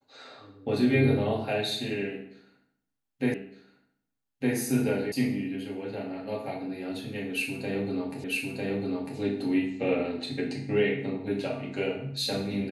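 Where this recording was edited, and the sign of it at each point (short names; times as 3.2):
3.34 repeat of the last 1.21 s
5.12 sound cut off
8.24 repeat of the last 0.95 s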